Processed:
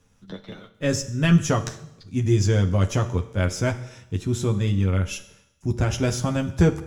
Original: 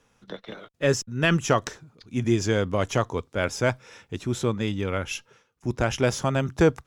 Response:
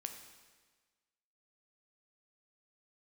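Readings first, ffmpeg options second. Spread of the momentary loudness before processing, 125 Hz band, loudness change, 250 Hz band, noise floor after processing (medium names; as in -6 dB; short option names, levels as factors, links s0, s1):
16 LU, +6.5 dB, +2.5 dB, +3.0 dB, -60 dBFS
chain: -filter_complex "[0:a]bass=f=250:g=12,treble=f=4000:g=6,asplit=2[s0][s1];[1:a]atrim=start_sample=2205,asetrate=74970,aresample=44100,adelay=11[s2];[s1][s2]afir=irnorm=-1:irlink=0,volume=1.58[s3];[s0][s3]amix=inputs=2:normalize=0,volume=0.562"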